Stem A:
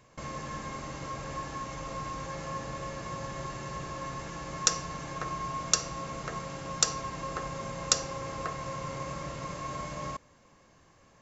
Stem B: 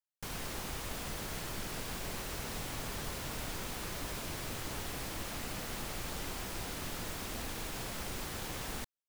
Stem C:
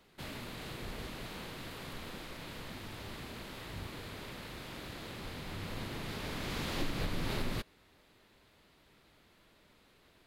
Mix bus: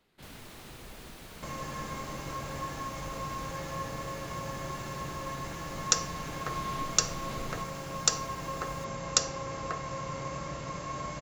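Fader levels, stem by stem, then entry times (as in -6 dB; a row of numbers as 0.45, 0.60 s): 0.0, -10.0, -7.0 dB; 1.25, 0.00, 0.00 s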